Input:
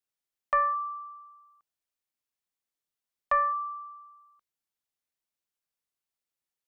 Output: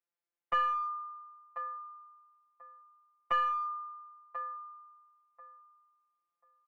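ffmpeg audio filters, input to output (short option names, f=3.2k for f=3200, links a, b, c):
-filter_complex "[0:a]asplit=2[a][b];[b]adelay=1039,lowpass=f=1.5k:p=1,volume=-11.5dB,asplit=2[c][d];[d]adelay=1039,lowpass=f=1.5k:p=1,volume=0.22,asplit=2[e][f];[f]adelay=1039,lowpass=f=1.5k:p=1,volume=0.22[g];[a][c][e][g]amix=inputs=4:normalize=0,aeval=exprs='clip(val(0),-1,0.0224)':c=same,afftfilt=real='hypot(re,im)*cos(PI*b)':imag='0':win_size=1024:overlap=0.75,acrossover=split=230 2400:gain=0.158 1 0.126[h][i][j];[h][i][j]amix=inputs=3:normalize=0,volume=3.5dB"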